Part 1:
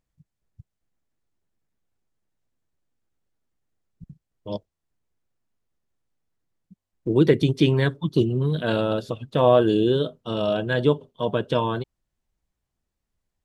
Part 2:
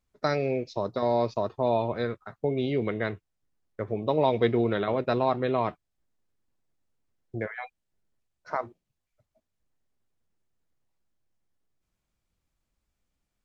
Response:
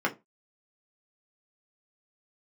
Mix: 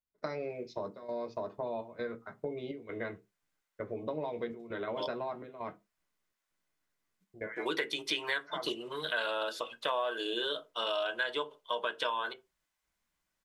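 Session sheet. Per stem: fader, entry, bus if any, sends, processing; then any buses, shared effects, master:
+2.0 dB, 0.50 s, send -12.5 dB, high-pass 1.1 kHz 12 dB/octave
-9.5 dB, 0.00 s, send -9.5 dB, compression, threshold -28 dBFS, peak gain reduction 10.5 dB; trance gate "..xxxxxxxx" 166 bpm -12 dB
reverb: on, RT60 0.20 s, pre-delay 3 ms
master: compression 6:1, threshold -30 dBFS, peak gain reduction 13.5 dB

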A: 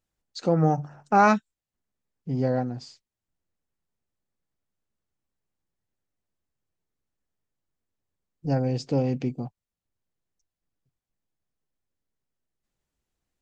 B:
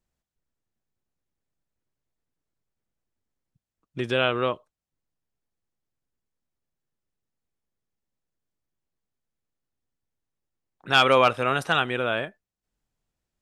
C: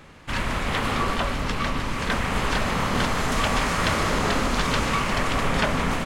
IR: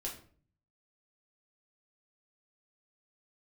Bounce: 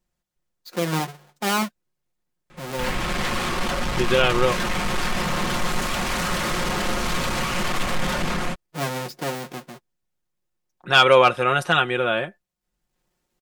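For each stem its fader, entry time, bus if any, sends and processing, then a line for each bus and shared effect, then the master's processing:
-10.0 dB, 0.30 s, no send, square wave that keeps the level; high-pass 220 Hz 12 dB/octave; level rider gain up to 15 dB; auto duck -13 dB, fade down 2.00 s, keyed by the second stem
+2.5 dB, 0.00 s, no send, none
-5.0 dB, 2.50 s, send -14 dB, peak limiter -15.5 dBFS, peak gain reduction 7.5 dB; level rider gain up to 13 dB; hard clipper -20.5 dBFS, distortion -5 dB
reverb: on, RT60 0.45 s, pre-delay 5 ms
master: comb 5.6 ms, depth 54%

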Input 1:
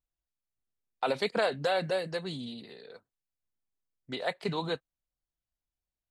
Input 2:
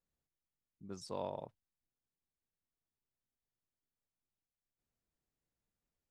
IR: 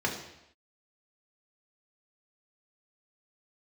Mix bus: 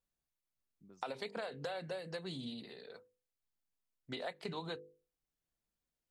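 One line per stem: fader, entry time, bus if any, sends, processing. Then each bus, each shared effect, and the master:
-2.5 dB, 0.00 s, no send, hum notches 50/100/150/200/250/300/350/400/450/500 Hz
-3.0 dB, 0.00 s, no send, high-pass 110 Hz 24 dB/octave; compression 3:1, threshold -49 dBFS, peak gain reduction 10.5 dB; auto duck -8 dB, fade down 1.45 s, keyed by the first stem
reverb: none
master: compression 10:1, threshold -38 dBFS, peak gain reduction 13 dB

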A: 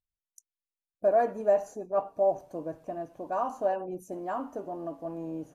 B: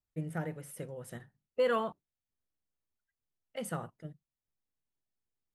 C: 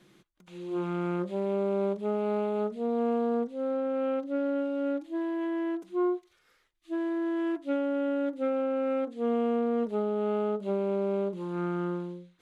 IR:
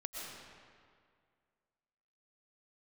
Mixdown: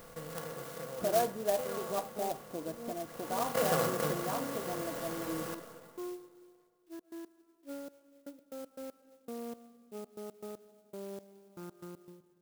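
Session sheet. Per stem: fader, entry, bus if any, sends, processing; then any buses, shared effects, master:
-4.5 dB, 0.00 s, no send, band-stop 580 Hz, Q 12; upward compressor, threshold -30 dBFS
3.01 s -18 dB -> 3.38 s -6 dB, 0.00 s, send -3 dB, spectral levelling over time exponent 0.2; treble shelf 8.7 kHz +11 dB
-15.5 dB, 0.00 s, send -11.5 dB, trance gate "x.x.x...xx..." 118 bpm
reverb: on, RT60 2.1 s, pre-delay 80 ms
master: sampling jitter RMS 0.066 ms

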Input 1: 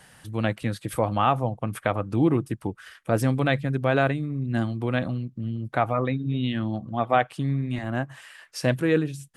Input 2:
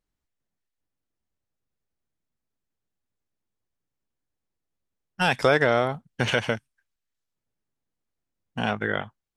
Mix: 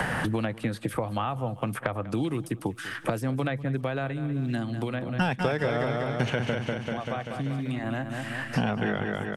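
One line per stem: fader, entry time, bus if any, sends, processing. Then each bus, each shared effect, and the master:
-8.0 dB, 0.00 s, no send, echo send -21.5 dB, three bands compressed up and down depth 100%; auto duck -14 dB, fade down 1.70 s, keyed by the second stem
-3.5 dB, 0.00 s, no send, echo send -4.5 dB, bass shelf 380 Hz +9 dB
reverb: none
echo: feedback delay 194 ms, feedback 46%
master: three bands compressed up and down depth 100%

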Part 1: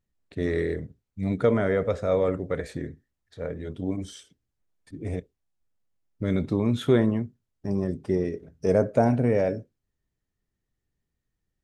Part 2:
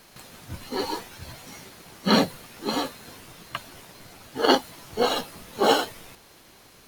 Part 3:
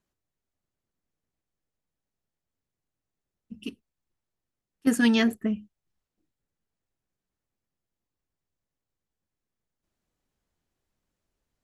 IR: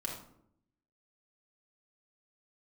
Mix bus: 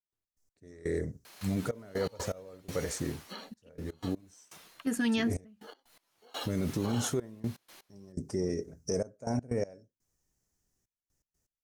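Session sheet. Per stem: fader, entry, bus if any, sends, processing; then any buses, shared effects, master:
-1.5 dB, 0.25 s, no send, resonant high shelf 4.5 kHz +10 dB, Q 3
0.0 dB, 1.25 s, no send, high-pass 670 Hz 6 dB/octave; compression 4:1, threshold -35 dBFS, peak gain reduction 15.5 dB; auto duck -15 dB, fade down 0.40 s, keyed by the third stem
-5.5 dB, 0.00 s, no send, none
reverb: none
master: trance gate ".x.x...xxxxxxx." 123 bpm -24 dB; peak limiter -21.5 dBFS, peak gain reduction 11 dB

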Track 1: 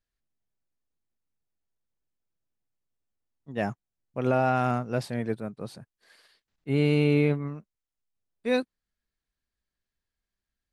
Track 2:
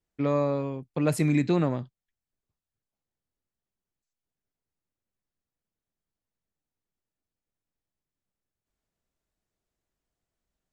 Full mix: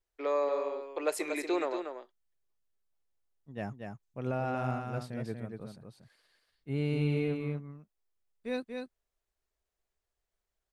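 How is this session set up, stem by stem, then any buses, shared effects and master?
-10.5 dB, 0.00 s, no send, echo send -5 dB, bass shelf 98 Hz +11.5 dB
-2.0 dB, 0.00 s, no send, echo send -7.5 dB, Chebyshev high-pass 370 Hz, order 4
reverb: none
echo: delay 236 ms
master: none

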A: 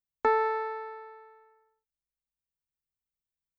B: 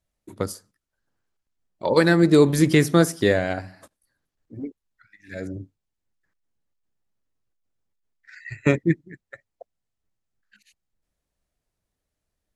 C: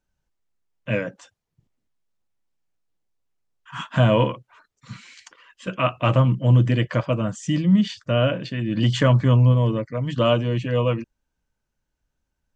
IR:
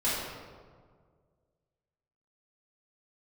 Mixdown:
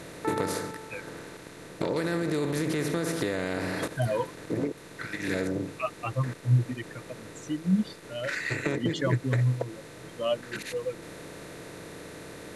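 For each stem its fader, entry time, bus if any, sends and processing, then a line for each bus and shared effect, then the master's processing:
-8.0 dB, 0.00 s, no send, none
-3.5 dB, 0.00 s, no send, spectral levelling over time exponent 0.4; peak limiter -8 dBFS, peak gain reduction 8 dB; compression 6:1, threshold -22 dBFS, peak gain reduction 9 dB
-4.5 dB, 0.00 s, no send, expander on every frequency bin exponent 3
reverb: none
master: none

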